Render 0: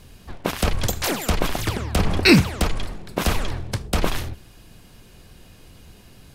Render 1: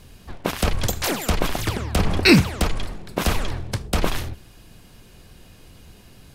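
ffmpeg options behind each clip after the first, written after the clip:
-af anull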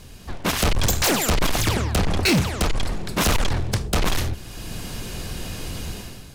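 -af "equalizer=f=6.5k:w=1.1:g=3.5,dynaudnorm=f=120:g=7:m=13dB,asoftclip=type=tanh:threshold=-18.5dB,volume=3dB"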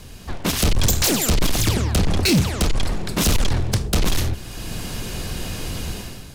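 -filter_complex "[0:a]acrossover=split=440|3000[a][b][c];[b]acompressor=threshold=-32dB:ratio=6[d];[a][d][c]amix=inputs=3:normalize=0,volume=3dB"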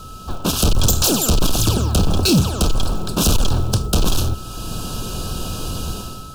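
-af "aeval=exprs='val(0)+0.0112*sin(2*PI*1300*n/s)':c=same,acrusher=bits=7:mode=log:mix=0:aa=0.000001,asuperstop=centerf=2000:order=4:qfactor=1.6,volume=2.5dB"

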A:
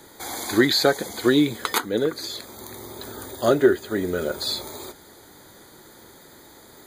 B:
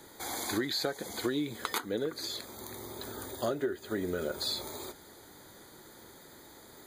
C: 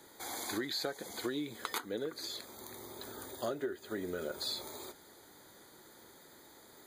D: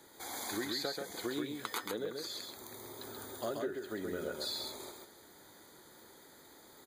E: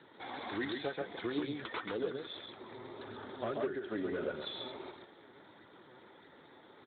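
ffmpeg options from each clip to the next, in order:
-af "acompressor=threshold=-24dB:ratio=6,volume=-5dB"
-af "lowshelf=f=150:g=-7,volume=-4dB"
-af "aecho=1:1:133:0.631,volume=-1.5dB"
-af "asoftclip=type=hard:threshold=-33dB,flanger=delay=0.5:depth=7.5:regen=47:speed=1.6:shape=sinusoidal,volume=6.5dB" -ar 8000 -c:a libspeex -b:a 18k

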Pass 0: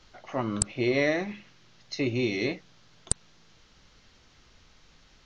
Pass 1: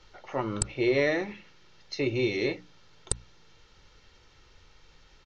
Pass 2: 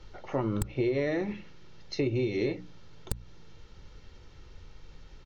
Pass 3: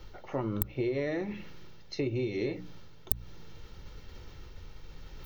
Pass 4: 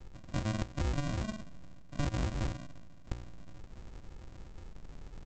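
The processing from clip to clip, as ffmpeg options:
-af "highshelf=f=8.6k:g=-10,bandreject=f=60:t=h:w=6,bandreject=f=120:t=h:w=6,bandreject=f=180:t=h:w=6,bandreject=f=240:t=h:w=6,bandreject=f=300:t=h:w=6,aecho=1:1:2.2:0.43"
-af "lowshelf=f=500:g=11.5,acompressor=threshold=-24dB:ratio=6,aeval=exprs='0.178*(abs(mod(val(0)/0.178+3,4)-2)-1)':c=same,volume=-1.5dB"
-af "areverse,acompressor=mode=upward:threshold=-33dB:ratio=2.5,areverse,aexciter=amount=4.1:drive=8.7:freq=11k,volume=-3dB"
-af "aresample=16000,acrusher=samples=37:mix=1:aa=0.000001,aresample=44100,tremolo=f=180:d=0.261" -ar 48000 -c:a sbc -b:a 128k

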